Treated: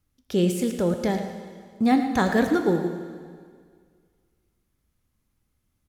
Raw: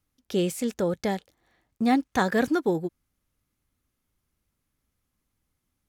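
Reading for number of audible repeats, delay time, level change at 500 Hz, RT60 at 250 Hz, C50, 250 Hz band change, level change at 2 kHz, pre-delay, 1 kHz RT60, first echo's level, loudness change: 1, 111 ms, +2.5 dB, 2.1 s, 6.0 dB, +3.5 dB, +1.0 dB, 13 ms, 1.9 s, -12.0 dB, +3.0 dB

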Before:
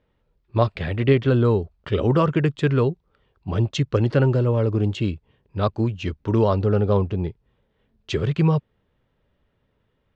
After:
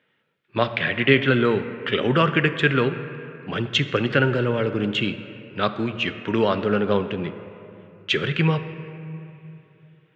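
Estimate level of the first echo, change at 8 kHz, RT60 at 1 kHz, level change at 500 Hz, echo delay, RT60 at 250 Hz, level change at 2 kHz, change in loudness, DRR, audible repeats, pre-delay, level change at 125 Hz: no echo, no reading, 2.7 s, -0.5 dB, no echo, 3.3 s, +11.5 dB, -0.5 dB, 9.5 dB, no echo, 4 ms, -5.5 dB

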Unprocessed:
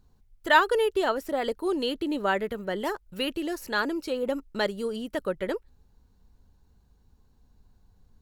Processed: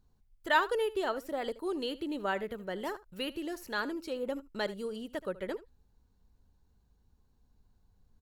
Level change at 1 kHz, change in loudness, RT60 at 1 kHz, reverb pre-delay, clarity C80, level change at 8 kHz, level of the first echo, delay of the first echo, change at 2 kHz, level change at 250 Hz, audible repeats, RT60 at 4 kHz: -7.0 dB, -7.0 dB, no reverb, no reverb, no reverb, -7.0 dB, -18.0 dB, 76 ms, -7.0 dB, -7.0 dB, 1, no reverb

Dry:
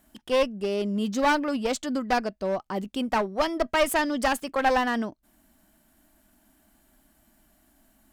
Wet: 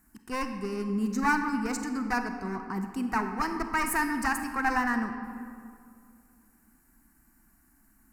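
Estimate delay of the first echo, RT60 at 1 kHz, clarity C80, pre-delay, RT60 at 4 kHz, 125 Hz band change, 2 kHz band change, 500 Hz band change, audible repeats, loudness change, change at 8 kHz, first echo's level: no echo, 2.2 s, 8.0 dB, 33 ms, 1.3 s, no reading, -0.5 dB, -13.0 dB, no echo, -3.5 dB, -1.5 dB, no echo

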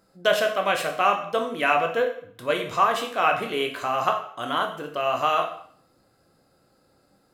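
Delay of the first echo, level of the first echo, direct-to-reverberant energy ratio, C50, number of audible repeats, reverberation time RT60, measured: no echo, no echo, 3.0 dB, 8.5 dB, no echo, 0.55 s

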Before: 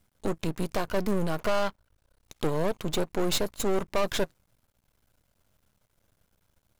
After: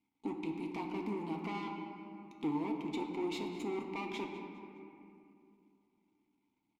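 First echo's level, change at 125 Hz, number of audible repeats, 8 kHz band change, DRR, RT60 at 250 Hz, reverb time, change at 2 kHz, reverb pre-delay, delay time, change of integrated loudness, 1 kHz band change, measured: -15.5 dB, -13.5 dB, 1, -22.5 dB, 1.0 dB, 3.4 s, 2.6 s, -10.0 dB, 4 ms, 204 ms, -10.0 dB, -8.0 dB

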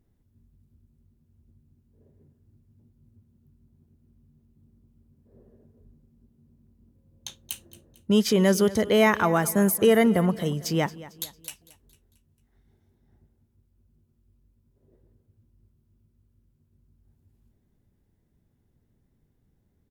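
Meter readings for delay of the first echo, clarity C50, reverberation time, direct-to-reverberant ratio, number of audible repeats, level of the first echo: 225 ms, no reverb, no reverb, no reverb, 3, -18.0 dB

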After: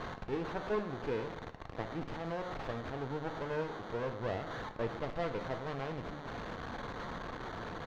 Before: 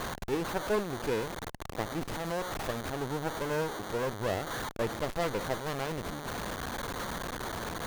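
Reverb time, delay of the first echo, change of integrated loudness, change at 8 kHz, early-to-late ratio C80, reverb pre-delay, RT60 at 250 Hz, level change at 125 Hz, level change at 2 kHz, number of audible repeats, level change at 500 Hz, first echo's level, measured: 0.85 s, 116 ms, -5.0 dB, under -15 dB, 12.5 dB, 3 ms, 0.75 s, -3.5 dB, -6.0 dB, 1, -4.5 dB, -17.0 dB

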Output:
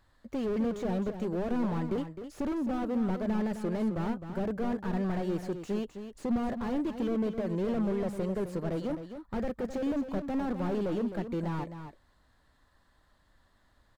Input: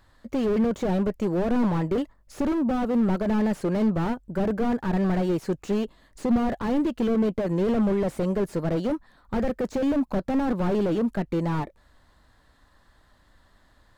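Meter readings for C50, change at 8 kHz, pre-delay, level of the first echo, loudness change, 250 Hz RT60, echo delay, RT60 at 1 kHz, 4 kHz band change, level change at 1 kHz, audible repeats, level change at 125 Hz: no reverb, no reading, no reverb, -9.5 dB, -7.0 dB, no reverb, 260 ms, no reverb, -7.0 dB, -7.0 dB, 1, -7.0 dB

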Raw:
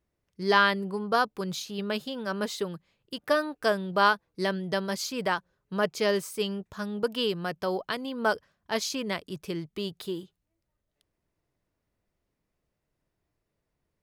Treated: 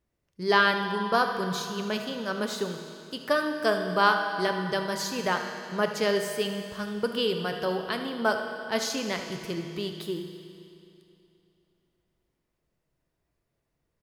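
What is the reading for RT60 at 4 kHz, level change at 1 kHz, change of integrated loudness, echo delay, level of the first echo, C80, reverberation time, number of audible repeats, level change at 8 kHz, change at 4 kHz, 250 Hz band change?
2.6 s, +1.0 dB, +1.0 dB, 77 ms, -13.0 dB, 7.0 dB, 2.8 s, 1, +1.5 dB, +1.0 dB, +0.5 dB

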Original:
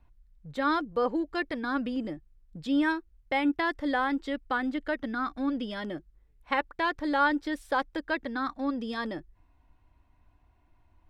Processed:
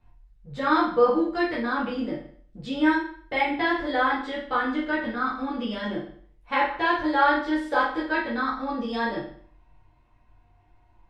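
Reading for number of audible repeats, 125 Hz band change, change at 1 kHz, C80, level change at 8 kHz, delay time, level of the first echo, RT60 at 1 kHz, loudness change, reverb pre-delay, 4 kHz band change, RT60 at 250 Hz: no echo, +4.5 dB, +6.0 dB, 9.0 dB, no reading, no echo, no echo, 0.55 s, +5.0 dB, 8 ms, +4.5 dB, 0.55 s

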